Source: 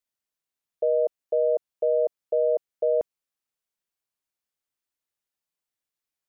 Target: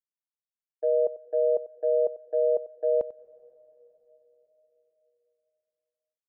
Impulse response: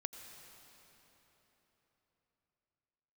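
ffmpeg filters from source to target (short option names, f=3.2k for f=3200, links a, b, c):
-filter_complex "[0:a]agate=range=-33dB:threshold=-20dB:ratio=3:detection=peak,asplit=2[a][b];[1:a]atrim=start_sample=2205,adelay=94[c];[b][c]afir=irnorm=-1:irlink=0,volume=-13.5dB[d];[a][d]amix=inputs=2:normalize=0"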